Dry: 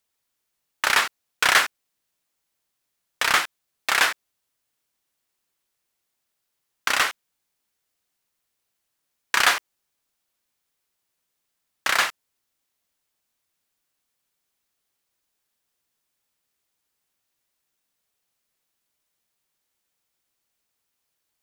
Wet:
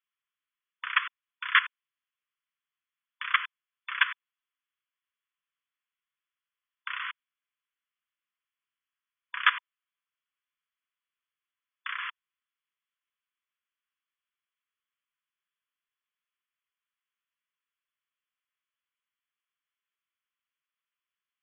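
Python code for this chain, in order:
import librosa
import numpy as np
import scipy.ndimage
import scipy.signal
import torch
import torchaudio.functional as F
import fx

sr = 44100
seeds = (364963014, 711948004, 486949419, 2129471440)

y = fx.level_steps(x, sr, step_db=17)
y = fx.brickwall_bandpass(y, sr, low_hz=970.0, high_hz=3500.0)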